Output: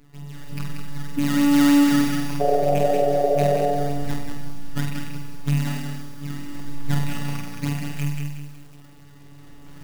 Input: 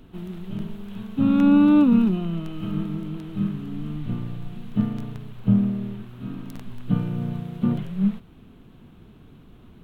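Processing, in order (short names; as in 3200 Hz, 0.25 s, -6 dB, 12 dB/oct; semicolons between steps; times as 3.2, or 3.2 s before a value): rattling part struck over -24 dBFS, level -18 dBFS; recorder AGC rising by 5.3 dB/s; Bessel low-pass 3100 Hz, order 8; in parallel at -9 dB: crossover distortion -39 dBFS; on the sum: decimation with a swept rate 16×, swing 160% 3.2 Hz; painted sound noise, 2.4–3.71, 380–770 Hz -13 dBFS; robotiser 143 Hz; on a send: flutter echo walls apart 8.2 m, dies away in 0.6 s; on the sum: lo-fi delay 0.185 s, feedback 35%, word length 7-bit, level -5 dB; gain -4 dB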